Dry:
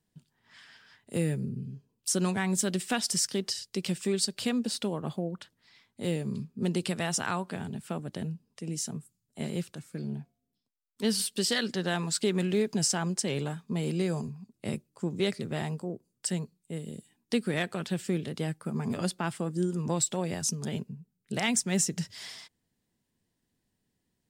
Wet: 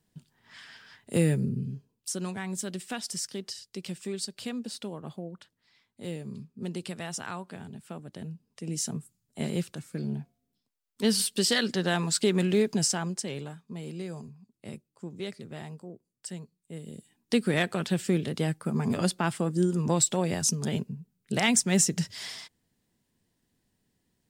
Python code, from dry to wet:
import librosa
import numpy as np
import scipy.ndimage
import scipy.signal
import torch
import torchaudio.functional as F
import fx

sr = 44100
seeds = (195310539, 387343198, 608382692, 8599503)

y = fx.gain(x, sr, db=fx.line((1.73, 5.0), (2.14, -6.0), (8.13, -6.0), (8.85, 3.0), (12.68, 3.0), (13.61, -8.0), (16.42, -8.0), (17.43, 4.0)))